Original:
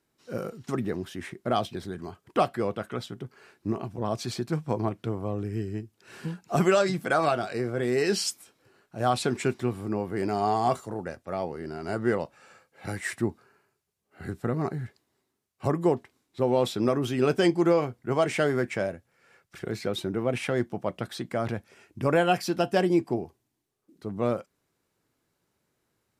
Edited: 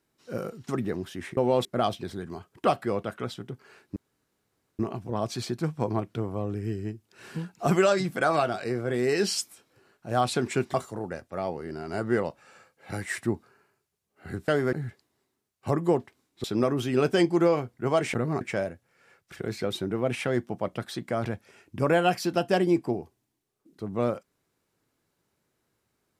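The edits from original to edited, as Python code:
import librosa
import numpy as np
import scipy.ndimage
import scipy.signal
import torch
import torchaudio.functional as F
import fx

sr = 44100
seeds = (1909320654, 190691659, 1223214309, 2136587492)

y = fx.edit(x, sr, fx.insert_room_tone(at_s=3.68, length_s=0.83),
    fx.cut(start_s=9.63, length_s=1.06),
    fx.swap(start_s=14.43, length_s=0.27, other_s=18.39, other_length_s=0.25),
    fx.move(start_s=16.41, length_s=0.28, to_s=1.37), tone=tone)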